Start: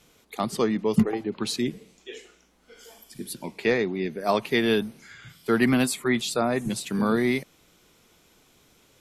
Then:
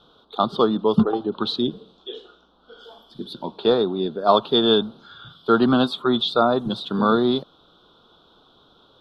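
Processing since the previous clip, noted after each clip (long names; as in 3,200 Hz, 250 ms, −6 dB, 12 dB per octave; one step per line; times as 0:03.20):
drawn EQ curve 110 Hz 0 dB, 1,400 Hz +10 dB, 2,100 Hz −27 dB, 3,500 Hz +13 dB, 7,000 Hz −25 dB, 10,000 Hz −23 dB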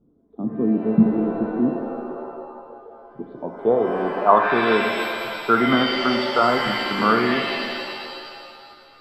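low-pass filter sweep 270 Hz → 1,600 Hz, 0:02.11–0:04.93
reverb with rising layers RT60 2 s, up +7 semitones, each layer −2 dB, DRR 5 dB
level −3.5 dB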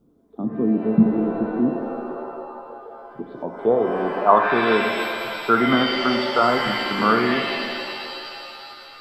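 one half of a high-frequency compander encoder only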